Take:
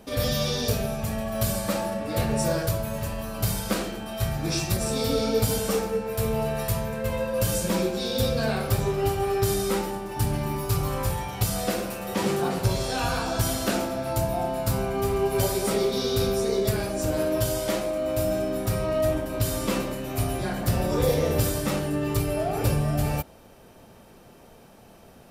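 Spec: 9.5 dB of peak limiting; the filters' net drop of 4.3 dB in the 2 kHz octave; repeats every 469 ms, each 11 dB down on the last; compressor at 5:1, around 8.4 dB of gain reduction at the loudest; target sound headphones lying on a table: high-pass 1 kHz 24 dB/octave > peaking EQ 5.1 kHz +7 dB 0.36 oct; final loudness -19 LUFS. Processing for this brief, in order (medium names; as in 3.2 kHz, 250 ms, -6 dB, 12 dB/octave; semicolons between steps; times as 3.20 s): peaking EQ 2 kHz -6 dB; compression 5:1, threshold -28 dBFS; peak limiter -25 dBFS; high-pass 1 kHz 24 dB/octave; peaking EQ 5.1 kHz +7 dB 0.36 oct; feedback delay 469 ms, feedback 28%, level -11 dB; trim +20.5 dB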